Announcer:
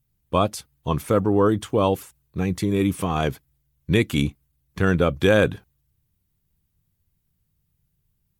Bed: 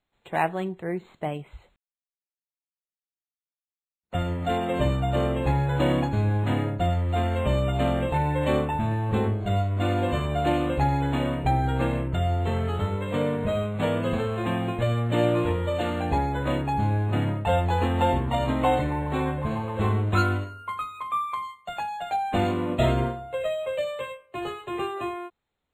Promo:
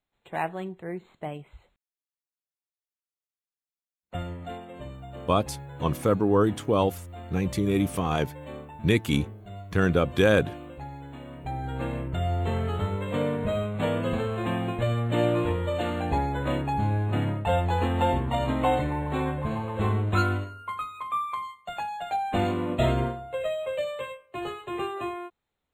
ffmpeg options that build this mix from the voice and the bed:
-filter_complex "[0:a]adelay=4950,volume=-3dB[a];[1:a]volume=10dB,afade=t=out:st=4.1:d=0.56:silence=0.266073,afade=t=in:st=11.26:d=1.17:silence=0.177828[b];[a][b]amix=inputs=2:normalize=0"

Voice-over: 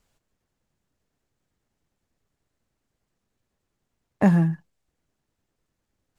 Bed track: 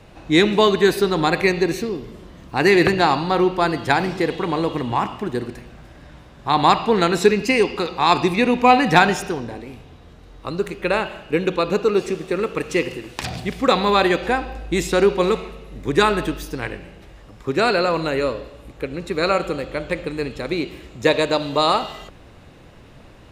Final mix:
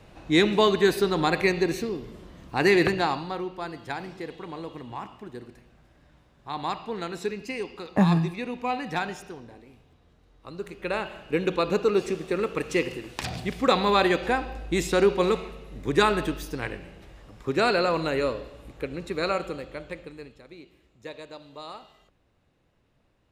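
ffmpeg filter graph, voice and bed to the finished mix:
-filter_complex "[0:a]adelay=3750,volume=-2.5dB[a];[1:a]volume=6dB,afade=t=out:st=2.72:d=0.71:silence=0.298538,afade=t=in:st=10.4:d=1.13:silence=0.281838,afade=t=out:st=18.72:d=1.72:silence=0.11885[b];[a][b]amix=inputs=2:normalize=0"

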